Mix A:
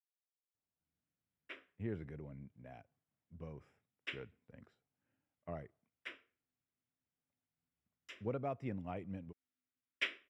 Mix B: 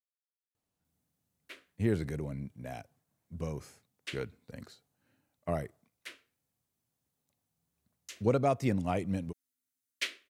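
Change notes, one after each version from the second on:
speech +12.0 dB; master: remove Savitzky-Golay filter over 25 samples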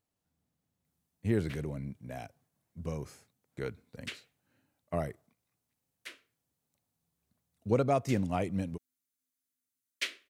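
speech: entry -0.55 s

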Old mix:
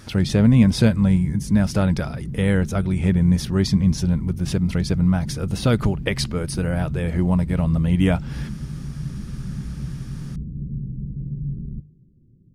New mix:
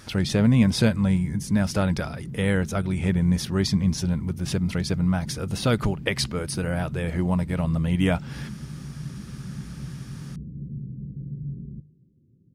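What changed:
background: add high-pass 79 Hz; master: add bass shelf 430 Hz -5 dB

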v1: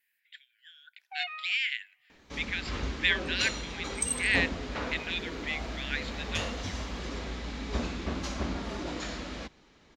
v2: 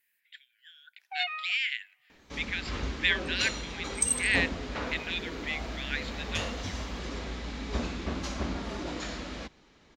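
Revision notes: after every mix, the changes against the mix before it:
first sound +4.0 dB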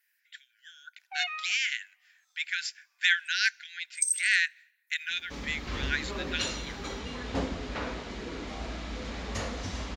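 speech: remove static phaser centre 2.7 kHz, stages 4; first sound: add high-pass 750 Hz 12 dB/octave; second sound: entry +3.00 s

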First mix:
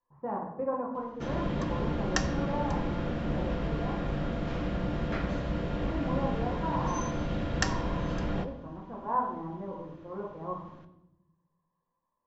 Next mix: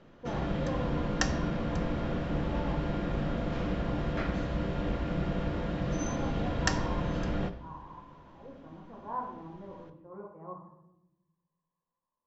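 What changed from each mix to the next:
speech -7.0 dB; background: entry -0.95 s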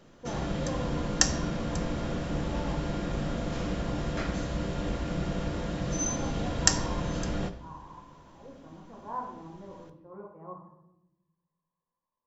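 master: remove low-pass 3.2 kHz 12 dB/octave

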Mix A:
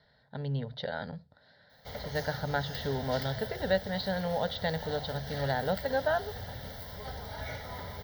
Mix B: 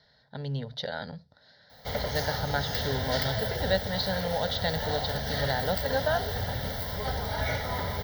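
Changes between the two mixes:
speech: remove distance through air 210 m; background +9.5 dB

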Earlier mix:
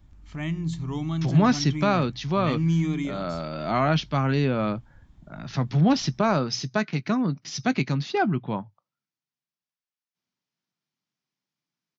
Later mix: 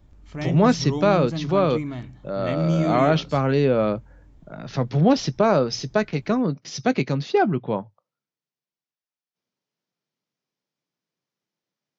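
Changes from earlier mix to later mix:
speech: entry -0.80 s; master: add peaking EQ 490 Hz +10.5 dB 0.86 oct

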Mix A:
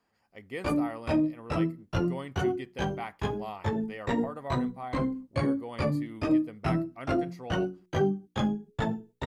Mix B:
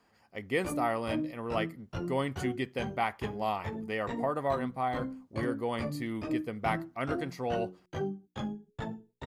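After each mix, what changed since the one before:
speech +7.5 dB; background -8.5 dB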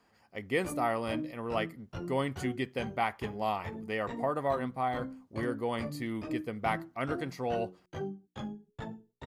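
background -3.5 dB

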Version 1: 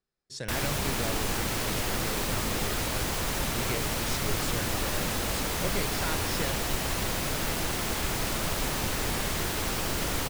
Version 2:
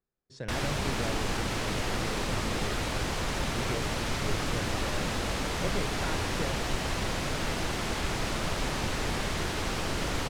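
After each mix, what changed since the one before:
speech: add treble shelf 2.3 kHz -11 dB; master: add distance through air 60 m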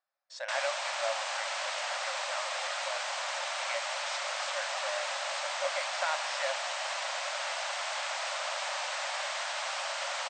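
speech +7.0 dB; master: add brick-wall FIR band-pass 530–8800 Hz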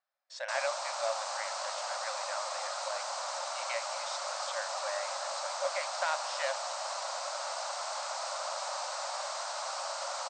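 background: add high-order bell 2.4 kHz -11.5 dB 1.3 oct

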